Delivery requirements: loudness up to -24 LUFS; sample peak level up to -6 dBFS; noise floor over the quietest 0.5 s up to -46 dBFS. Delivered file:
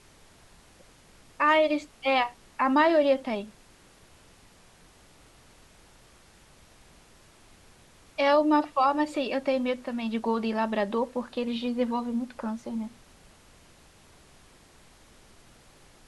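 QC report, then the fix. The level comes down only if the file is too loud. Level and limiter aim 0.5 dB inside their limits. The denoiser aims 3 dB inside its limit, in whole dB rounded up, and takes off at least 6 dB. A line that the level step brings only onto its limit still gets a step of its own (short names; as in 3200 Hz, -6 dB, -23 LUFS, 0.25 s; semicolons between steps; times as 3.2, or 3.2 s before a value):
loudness -26.5 LUFS: OK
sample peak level -11.5 dBFS: OK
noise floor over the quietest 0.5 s -56 dBFS: OK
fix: none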